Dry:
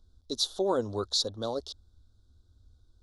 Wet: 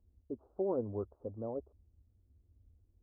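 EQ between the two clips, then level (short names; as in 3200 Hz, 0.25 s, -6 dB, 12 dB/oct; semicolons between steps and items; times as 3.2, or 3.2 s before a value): Gaussian blur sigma 11 samples; HPF 41 Hz; -3.5 dB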